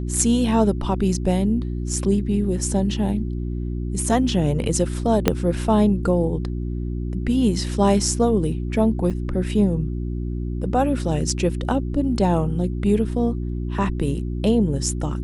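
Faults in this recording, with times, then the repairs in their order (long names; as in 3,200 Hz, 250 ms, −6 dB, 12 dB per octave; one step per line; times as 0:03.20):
mains hum 60 Hz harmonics 6 −26 dBFS
0:05.28: click −2 dBFS
0:09.10–0:09.11: drop-out 6.9 ms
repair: click removal
hum removal 60 Hz, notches 6
repair the gap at 0:09.10, 6.9 ms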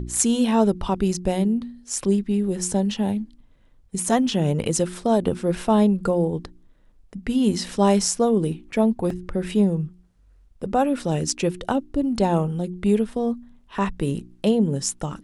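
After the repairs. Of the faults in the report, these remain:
0:05.28: click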